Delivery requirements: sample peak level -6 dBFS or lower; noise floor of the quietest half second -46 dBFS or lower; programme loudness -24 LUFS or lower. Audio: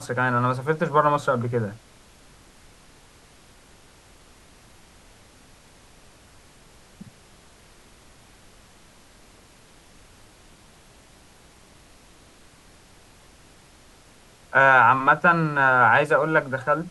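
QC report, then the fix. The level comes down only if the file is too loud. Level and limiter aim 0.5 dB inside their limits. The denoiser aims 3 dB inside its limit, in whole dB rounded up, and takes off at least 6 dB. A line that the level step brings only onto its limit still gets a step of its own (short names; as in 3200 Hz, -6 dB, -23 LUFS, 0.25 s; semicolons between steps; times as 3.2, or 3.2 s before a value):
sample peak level -4.5 dBFS: fail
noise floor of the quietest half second -52 dBFS: OK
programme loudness -19.5 LUFS: fail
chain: gain -5 dB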